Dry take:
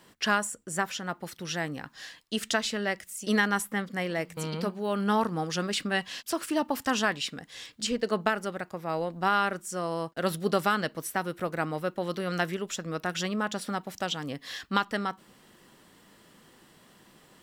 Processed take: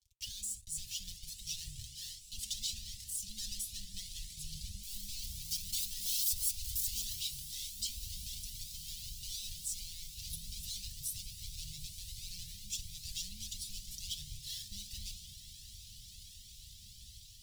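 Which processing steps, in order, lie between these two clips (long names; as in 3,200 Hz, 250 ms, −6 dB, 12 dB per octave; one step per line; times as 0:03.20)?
0:04.83–0:07.15: spike at every zero crossing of −19.5 dBFS
brickwall limiter −22.5 dBFS, peak gain reduction 11.5 dB
three-way crossover with the lows and the highs turned down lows −22 dB, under 220 Hz, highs −16 dB, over 2,200 Hz
automatic gain control gain up to 5 dB
high-shelf EQ 2,400 Hz −3 dB
convolution reverb RT60 0.65 s, pre-delay 5 ms, DRR 8 dB
leveller curve on the samples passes 5
downward compressor 2 to 1, threshold −28 dBFS, peak gain reduction 6 dB
inverse Chebyshev band-stop filter 290–1,500 Hz, stop band 60 dB
notch comb filter 170 Hz
feedback delay with all-pass diffusion 1,017 ms, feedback 77%, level −12.5 dB
flanger whose copies keep moving one way rising 1.4 Hz
level +3.5 dB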